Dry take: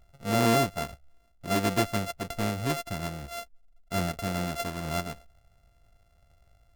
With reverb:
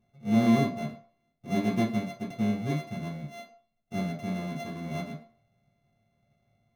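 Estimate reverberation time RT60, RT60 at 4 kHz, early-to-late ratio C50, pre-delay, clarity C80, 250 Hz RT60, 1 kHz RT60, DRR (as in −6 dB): 0.50 s, 0.40 s, 9.5 dB, 3 ms, 13.5 dB, 0.40 s, 0.55 s, −7.5 dB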